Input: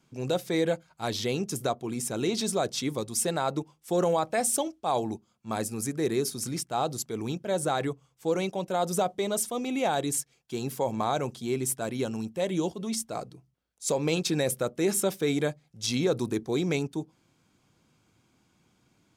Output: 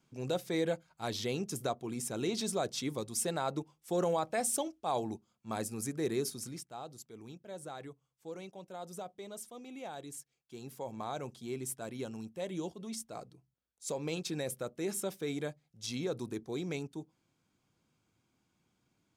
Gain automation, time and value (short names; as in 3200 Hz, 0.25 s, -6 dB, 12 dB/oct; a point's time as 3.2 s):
6.28 s -6 dB
6.81 s -17 dB
10.15 s -17 dB
11.33 s -10 dB